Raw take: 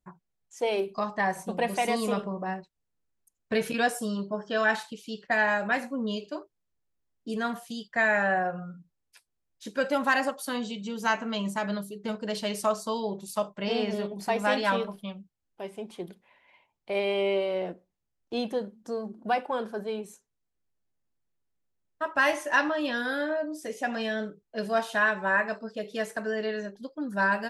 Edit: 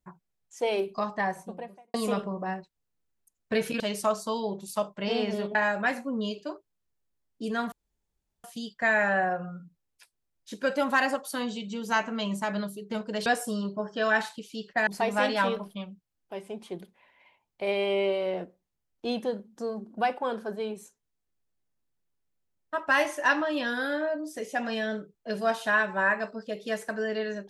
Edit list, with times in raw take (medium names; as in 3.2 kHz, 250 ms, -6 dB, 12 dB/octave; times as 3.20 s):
1.04–1.94 s: studio fade out
3.80–5.41 s: swap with 12.40–14.15 s
7.58 s: insert room tone 0.72 s